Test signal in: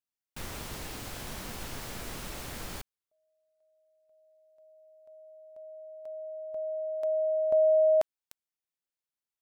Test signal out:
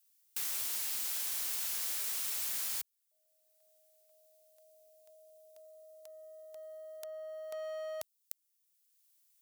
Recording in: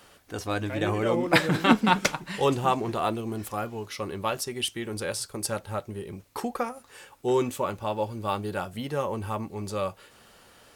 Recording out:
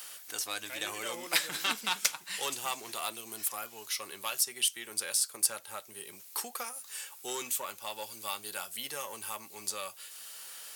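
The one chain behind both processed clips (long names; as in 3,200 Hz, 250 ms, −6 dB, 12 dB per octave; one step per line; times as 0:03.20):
one-sided soft clipper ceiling −13.5 dBFS
first difference
multiband upward and downward compressor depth 40%
level +7.5 dB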